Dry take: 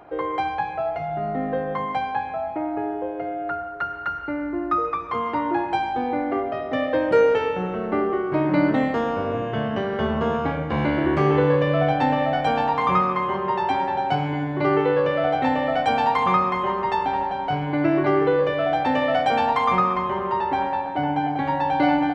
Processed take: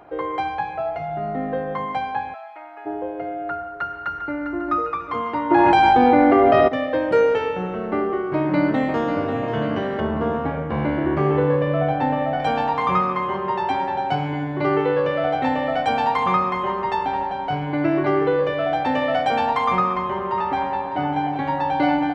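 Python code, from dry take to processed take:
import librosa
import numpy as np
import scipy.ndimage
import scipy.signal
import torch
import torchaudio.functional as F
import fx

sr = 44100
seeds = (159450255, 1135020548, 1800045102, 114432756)

y = fx.highpass(x, sr, hz=1300.0, slope=12, at=(2.33, 2.85), fade=0.02)
y = fx.echo_throw(y, sr, start_s=3.69, length_s=0.72, ms=400, feedback_pct=55, wet_db=-9.0)
y = fx.env_flatten(y, sr, amount_pct=100, at=(5.5, 6.67), fade=0.02)
y = fx.echo_throw(y, sr, start_s=8.34, length_s=0.95, ms=540, feedback_pct=65, wet_db=-8.5)
y = fx.lowpass(y, sr, hz=1700.0, slope=6, at=(10.0, 12.4))
y = fx.echo_throw(y, sr, start_s=19.77, length_s=1.14, ms=600, feedback_pct=35, wet_db=-11.5)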